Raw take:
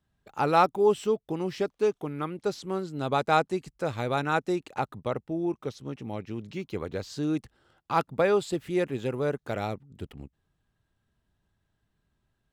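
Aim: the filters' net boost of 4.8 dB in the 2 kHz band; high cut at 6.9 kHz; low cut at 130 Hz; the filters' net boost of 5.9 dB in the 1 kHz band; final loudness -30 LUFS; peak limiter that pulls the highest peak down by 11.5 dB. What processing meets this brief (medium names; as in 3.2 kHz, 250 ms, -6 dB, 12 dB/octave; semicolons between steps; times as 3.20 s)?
high-pass 130 Hz; low-pass 6.9 kHz; peaking EQ 1 kHz +7 dB; peaking EQ 2 kHz +3.5 dB; trim -0.5 dB; peak limiter -15 dBFS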